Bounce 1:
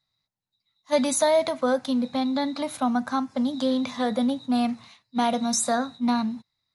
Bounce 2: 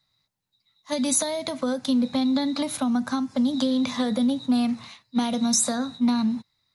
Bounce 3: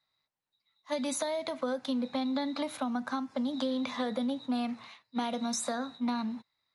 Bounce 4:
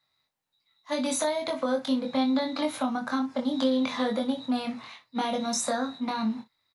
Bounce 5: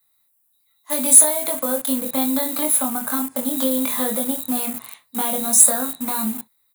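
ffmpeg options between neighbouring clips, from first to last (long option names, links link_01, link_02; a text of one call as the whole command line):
ffmpeg -i in.wav -filter_complex "[0:a]acompressor=threshold=-24dB:ratio=4,equalizer=frequency=710:width_type=o:width=0.21:gain=-3,acrossover=split=340|3000[link_01][link_02][link_03];[link_02]acompressor=threshold=-39dB:ratio=3[link_04];[link_01][link_04][link_03]amix=inputs=3:normalize=0,volume=6.5dB" out.wav
ffmpeg -i in.wav -af "bass=frequency=250:gain=-13,treble=frequency=4000:gain=-11,volume=-3.5dB" out.wav
ffmpeg -i in.wav -af "aecho=1:1:23|60:0.668|0.2,volume=3.5dB" out.wav
ffmpeg -i in.wav -filter_complex "[0:a]asplit=2[link_01][link_02];[link_02]acrusher=bits=5:mix=0:aa=0.000001,volume=-6dB[link_03];[link_01][link_03]amix=inputs=2:normalize=0,aexciter=amount=14.1:drive=6.6:freq=8000,asoftclip=type=hard:threshold=-0.5dB,volume=-1dB" out.wav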